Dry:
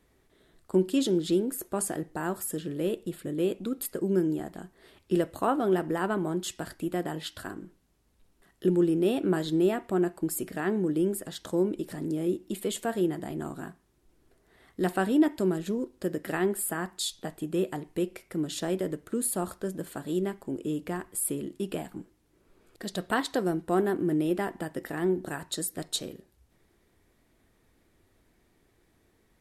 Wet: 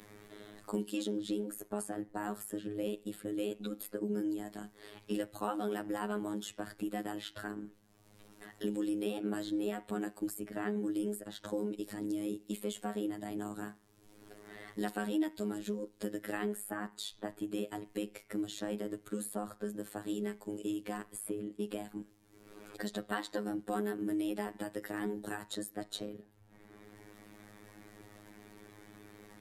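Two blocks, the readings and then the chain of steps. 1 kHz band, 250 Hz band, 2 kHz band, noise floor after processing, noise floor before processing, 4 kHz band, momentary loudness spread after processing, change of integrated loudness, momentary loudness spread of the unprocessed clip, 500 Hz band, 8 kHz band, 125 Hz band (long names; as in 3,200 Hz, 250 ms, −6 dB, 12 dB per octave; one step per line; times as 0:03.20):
−7.5 dB, −7.5 dB, −7.0 dB, −64 dBFS, −68 dBFS, −7.5 dB, 20 LU, −9.0 dB, 10 LU, −10.0 dB, −11.0 dB, −12.5 dB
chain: spectral magnitudes quantised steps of 15 dB
phases set to zero 104 Hz
multiband upward and downward compressor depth 70%
level −5 dB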